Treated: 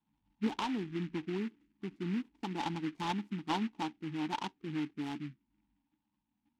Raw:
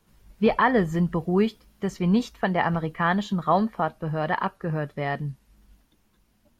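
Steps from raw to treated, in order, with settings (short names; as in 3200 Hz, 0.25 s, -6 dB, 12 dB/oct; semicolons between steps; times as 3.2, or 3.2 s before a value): Wiener smoothing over 25 samples; vowel filter u; envelope phaser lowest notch 370 Hz, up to 2600 Hz, full sweep at -35.5 dBFS; 0.52–2.66 compressor 4:1, threshold -36 dBFS, peak gain reduction 6 dB; bell 580 Hz -8.5 dB 0.68 oct; noise-modulated delay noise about 2000 Hz, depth 0.092 ms; gain +4.5 dB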